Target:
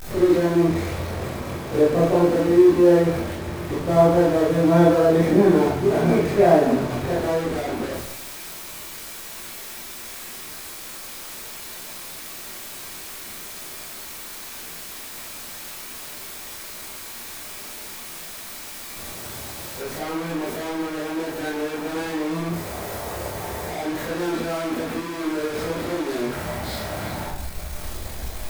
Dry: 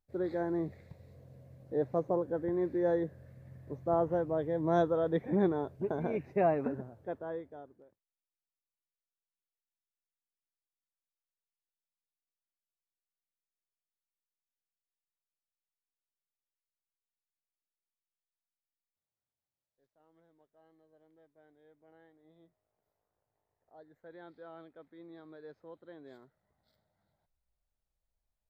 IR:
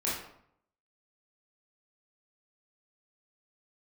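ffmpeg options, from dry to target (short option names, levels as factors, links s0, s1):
-filter_complex "[0:a]aeval=exprs='val(0)+0.5*0.0211*sgn(val(0))':c=same[s0];[1:a]atrim=start_sample=2205[s1];[s0][s1]afir=irnorm=-1:irlink=0,volume=1.58"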